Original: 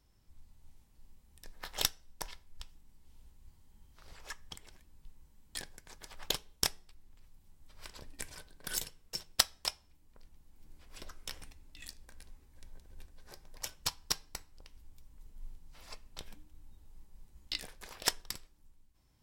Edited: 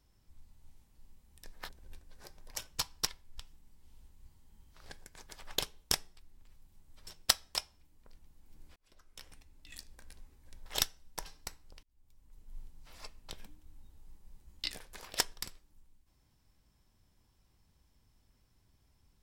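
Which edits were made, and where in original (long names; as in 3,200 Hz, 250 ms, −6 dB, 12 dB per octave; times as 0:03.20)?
0:01.69–0:02.29: swap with 0:12.76–0:14.14
0:04.12–0:05.62: remove
0:07.79–0:09.17: remove
0:10.86–0:12.01: fade in
0:14.71–0:15.48: fade in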